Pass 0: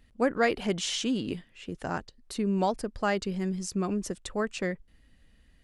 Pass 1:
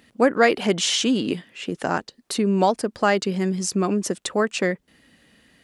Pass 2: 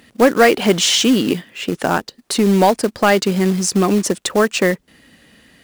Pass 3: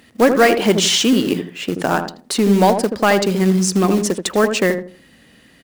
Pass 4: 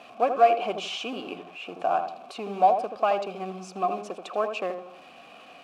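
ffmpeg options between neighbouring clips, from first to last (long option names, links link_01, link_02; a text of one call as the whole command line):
ffmpeg -i in.wav -filter_complex "[0:a]highpass=190,asplit=2[link_01][link_02];[link_02]acompressor=threshold=-37dB:ratio=6,volume=-1.5dB[link_03];[link_01][link_03]amix=inputs=2:normalize=0,volume=7dB" out.wav
ffmpeg -i in.wav -af "acontrast=89,acrusher=bits=4:mode=log:mix=0:aa=0.000001" out.wav
ffmpeg -i in.wav -filter_complex "[0:a]asplit=2[link_01][link_02];[link_02]adelay=80,lowpass=frequency=890:poles=1,volume=-5.5dB,asplit=2[link_03][link_04];[link_04]adelay=80,lowpass=frequency=890:poles=1,volume=0.31,asplit=2[link_05][link_06];[link_06]adelay=80,lowpass=frequency=890:poles=1,volume=0.31,asplit=2[link_07][link_08];[link_08]adelay=80,lowpass=frequency=890:poles=1,volume=0.31[link_09];[link_01][link_03][link_05][link_07][link_09]amix=inputs=5:normalize=0,volume=-1dB" out.wav
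ffmpeg -i in.wav -filter_complex "[0:a]aeval=exprs='val(0)+0.5*0.0422*sgn(val(0))':channel_layout=same,asplit=3[link_01][link_02][link_03];[link_01]bandpass=frequency=730:width_type=q:width=8,volume=0dB[link_04];[link_02]bandpass=frequency=1090:width_type=q:width=8,volume=-6dB[link_05];[link_03]bandpass=frequency=2440:width_type=q:width=8,volume=-9dB[link_06];[link_04][link_05][link_06]amix=inputs=3:normalize=0" out.wav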